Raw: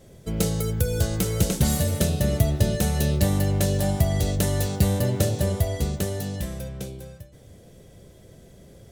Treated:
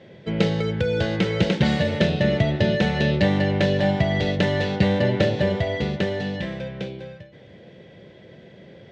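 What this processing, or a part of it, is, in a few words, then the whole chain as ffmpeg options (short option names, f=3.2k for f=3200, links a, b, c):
kitchen radio: -af "highpass=200,equalizer=f=270:t=q:w=4:g=-6,equalizer=f=420:t=q:w=4:g=-4,equalizer=f=700:t=q:w=4:g=-5,equalizer=f=1.2k:t=q:w=4:g=-8,equalizer=f=1.9k:t=q:w=4:g=4,lowpass=f=3.5k:w=0.5412,lowpass=f=3.5k:w=1.3066,volume=9dB"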